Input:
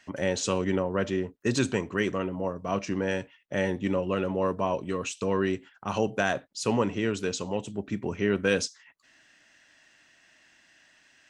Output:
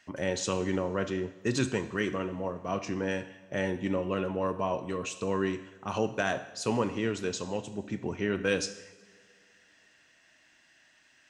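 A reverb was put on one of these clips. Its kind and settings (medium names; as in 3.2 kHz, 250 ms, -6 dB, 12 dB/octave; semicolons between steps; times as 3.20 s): two-slope reverb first 0.93 s, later 2.9 s, DRR 9.5 dB; trim -3 dB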